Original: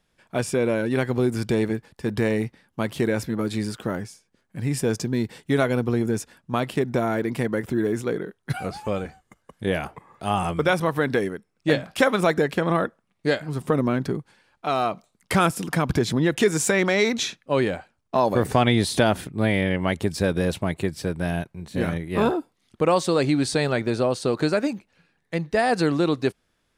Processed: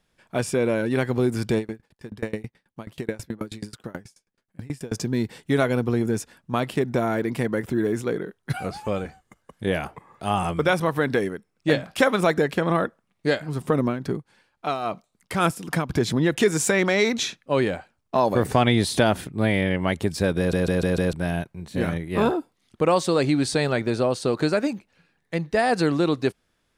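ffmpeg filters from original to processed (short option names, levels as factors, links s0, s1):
-filter_complex "[0:a]asettb=1/sr,asplit=3[s0][s1][s2];[s0]atrim=end=1.584[s3];[s1]atrim=start=1.58:end=4.92,asetpts=PTS-STARTPTS,afade=t=in:d=0.004:c=qsin,afade=t=out:st=3.336:d=0.004:c=qsin,aeval=exprs='val(0)*pow(10,-28*if(lt(mod(9.3*n/s,1),2*abs(9.3)/1000),1-mod(9.3*n/s,1)/(2*abs(9.3)/1000),(mod(9.3*n/s,1)-2*abs(9.3)/1000)/(1-2*abs(9.3)/1000))/20)':c=same[s4];[s2]atrim=start=4.916[s5];[s3][s4]acrossfade=d=0.004:c1=hsin:c2=qsin[s6];[s6][s5]acrossfade=d=0.004:c1=qsin:c2=hsin,asettb=1/sr,asplit=3[s7][s8][s9];[s7]atrim=end=13.854[s10];[s8]atrim=start=13.85:end=16.02,asetpts=PTS-STARTPTS,afade=t=in:d=0.004:c=qsin,afade=t=out:st=2.166:d=0.004:c=qsin,tremolo=f=3.7:d=0.58[s11];[s9]atrim=start=16.016[s12];[s10][s11]acrossfade=d=0.004:c1=hsin:c2=qsin[s13];[s13][s12]acrossfade=d=0.004:c1=qsin:c2=hsin,asplit=6[s14][s15][s16][s17][s18][s19];[s14]atrim=end=20.532[s20];[s15]atrim=start=20.378:end=20.532[s21];[s16]atrim=start=20.378:end=20.532[s22];[s17]atrim=start=20.378:end=20.532[s23];[s18]atrim=start=20.378:end=20.532[s24];[s19]atrim=start=21.128[s25];[s20][s21]acrossfade=d=0.004:c1=hsin:c2=hsin[s26];[s26][s22]acrossfade=d=0.004:c1=hsin:c2=hsin[s27];[s27][s23]acrossfade=d=0.004:c1=hsin:c2=hsin[s28];[s28][s24]acrossfade=d=0.004:c1=hsin:c2=hsin[s29];[s29][s25]acrossfade=d=0.004:c1=hsin:c2=hsin"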